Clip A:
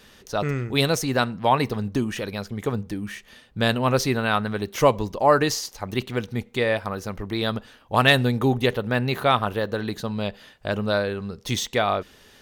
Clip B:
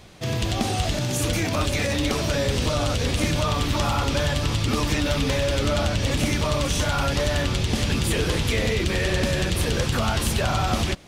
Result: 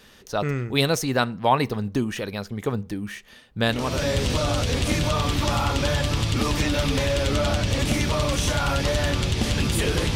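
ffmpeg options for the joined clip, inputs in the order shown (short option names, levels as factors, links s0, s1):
-filter_complex "[0:a]apad=whole_dur=10.15,atrim=end=10.15,atrim=end=4.08,asetpts=PTS-STARTPTS[s0];[1:a]atrim=start=1.94:end=8.47,asetpts=PTS-STARTPTS[s1];[s0][s1]acrossfade=d=0.46:c1=tri:c2=tri"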